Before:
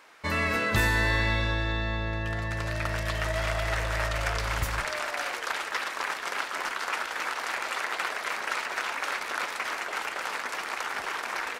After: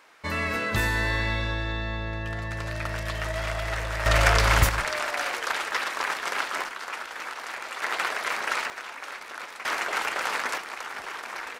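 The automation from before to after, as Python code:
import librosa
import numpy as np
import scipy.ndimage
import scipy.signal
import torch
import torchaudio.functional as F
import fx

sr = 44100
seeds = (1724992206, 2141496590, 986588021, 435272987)

y = fx.gain(x, sr, db=fx.steps((0.0, -1.0), (4.06, 9.5), (4.69, 3.0), (6.64, -4.0), (7.82, 3.0), (8.7, -7.0), (9.65, 4.5), (10.58, -3.5)))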